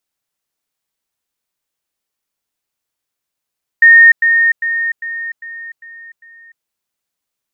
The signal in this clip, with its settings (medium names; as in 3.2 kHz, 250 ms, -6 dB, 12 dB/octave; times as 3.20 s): level ladder 1.84 kHz -2 dBFS, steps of -6 dB, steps 7, 0.30 s 0.10 s